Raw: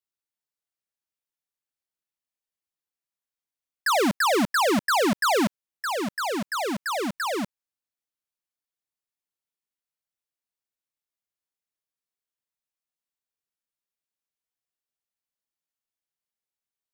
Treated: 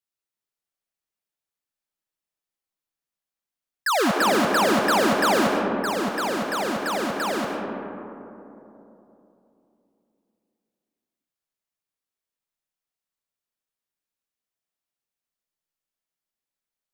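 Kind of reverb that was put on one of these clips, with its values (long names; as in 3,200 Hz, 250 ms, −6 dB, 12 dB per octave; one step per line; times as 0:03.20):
comb and all-pass reverb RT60 3.2 s, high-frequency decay 0.3×, pre-delay 70 ms, DRR 1.5 dB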